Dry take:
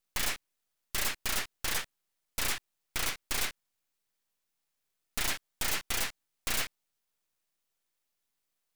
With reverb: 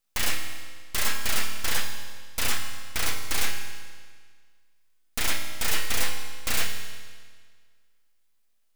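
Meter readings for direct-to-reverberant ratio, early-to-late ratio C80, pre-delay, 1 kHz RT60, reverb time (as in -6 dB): 3.0 dB, 7.0 dB, 4 ms, 1.7 s, 1.7 s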